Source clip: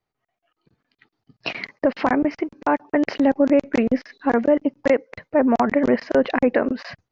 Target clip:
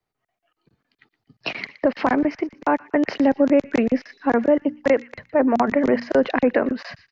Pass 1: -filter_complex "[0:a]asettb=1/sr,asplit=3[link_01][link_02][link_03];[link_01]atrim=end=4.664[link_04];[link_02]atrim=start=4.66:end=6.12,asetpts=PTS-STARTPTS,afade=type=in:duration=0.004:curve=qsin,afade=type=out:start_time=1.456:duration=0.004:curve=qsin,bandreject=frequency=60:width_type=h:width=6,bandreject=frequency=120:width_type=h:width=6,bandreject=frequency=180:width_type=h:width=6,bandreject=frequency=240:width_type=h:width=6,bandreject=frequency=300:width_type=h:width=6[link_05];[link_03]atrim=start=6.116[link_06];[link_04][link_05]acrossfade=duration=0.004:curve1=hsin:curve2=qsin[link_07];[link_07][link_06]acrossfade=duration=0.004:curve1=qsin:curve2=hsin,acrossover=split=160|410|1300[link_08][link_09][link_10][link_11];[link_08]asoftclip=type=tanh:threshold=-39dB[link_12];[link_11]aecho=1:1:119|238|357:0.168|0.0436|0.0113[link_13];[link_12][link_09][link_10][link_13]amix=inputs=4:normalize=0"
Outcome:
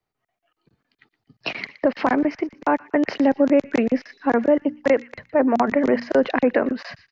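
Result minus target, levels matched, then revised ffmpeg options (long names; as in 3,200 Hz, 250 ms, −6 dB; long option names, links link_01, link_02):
soft clipping: distortion +11 dB
-filter_complex "[0:a]asettb=1/sr,asplit=3[link_01][link_02][link_03];[link_01]atrim=end=4.664[link_04];[link_02]atrim=start=4.66:end=6.12,asetpts=PTS-STARTPTS,afade=type=in:duration=0.004:curve=qsin,afade=type=out:start_time=1.456:duration=0.004:curve=qsin,bandreject=frequency=60:width_type=h:width=6,bandreject=frequency=120:width_type=h:width=6,bandreject=frequency=180:width_type=h:width=6,bandreject=frequency=240:width_type=h:width=6,bandreject=frequency=300:width_type=h:width=6[link_05];[link_03]atrim=start=6.116[link_06];[link_04][link_05]acrossfade=duration=0.004:curve1=hsin:curve2=qsin[link_07];[link_07][link_06]acrossfade=duration=0.004:curve1=qsin:curve2=hsin,acrossover=split=160|410|1300[link_08][link_09][link_10][link_11];[link_08]asoftclip=type=tanh:threshold=-28.5dB[link_12];[link_11]aecho=1:1:119|238|357:0.168|0.0436|0.0113[link_13];[link_12][link_09][link_10][link_13]amix=inputs=4:normalize=0"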